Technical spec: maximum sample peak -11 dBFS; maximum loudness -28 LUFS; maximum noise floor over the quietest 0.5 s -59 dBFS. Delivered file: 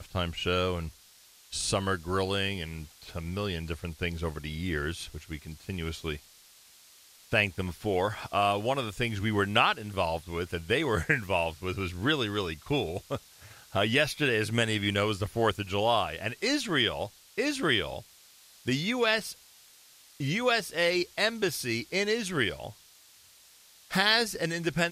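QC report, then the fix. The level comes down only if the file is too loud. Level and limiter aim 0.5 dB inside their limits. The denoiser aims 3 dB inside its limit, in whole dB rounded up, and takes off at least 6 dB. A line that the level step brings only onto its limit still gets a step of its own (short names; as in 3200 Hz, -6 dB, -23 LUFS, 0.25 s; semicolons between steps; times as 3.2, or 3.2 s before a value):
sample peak -9.0 dBFS: fail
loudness -29.0 LUFS: OK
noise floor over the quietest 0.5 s -57 dBFS: fail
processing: denoiser 6 dB, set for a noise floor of -57 dBFS; limiter -11.5 dBFS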